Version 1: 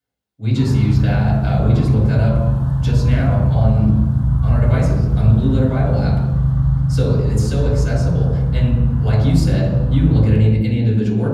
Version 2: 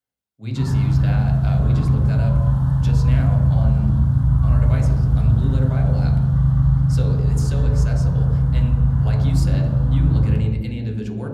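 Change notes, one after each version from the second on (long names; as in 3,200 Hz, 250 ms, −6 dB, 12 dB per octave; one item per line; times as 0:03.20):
speech: send −10.0 dB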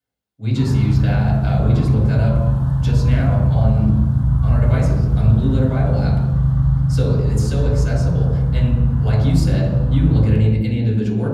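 speech: send +8.0 dB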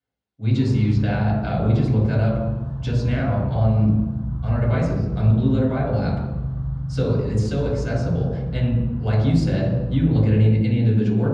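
background −11.0 dB
master: add high-frequency loss of the air 97 metres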